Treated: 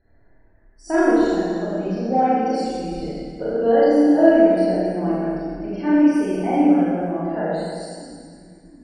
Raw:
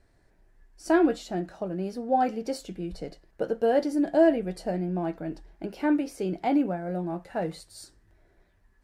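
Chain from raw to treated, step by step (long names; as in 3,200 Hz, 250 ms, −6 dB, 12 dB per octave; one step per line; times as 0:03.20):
echo with a time of its own for lows and highs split 310 Hz, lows 711 ms, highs 110 ms, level −15 dB
in parallel at −8 dB: soft clipping −20 dBFS, distortion −12 dB
on the sum: spectral peaks only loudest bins 64
four-comb reverb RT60 1.9 s, combs from 27 ms, DRR −9.5 dB
level −5 dB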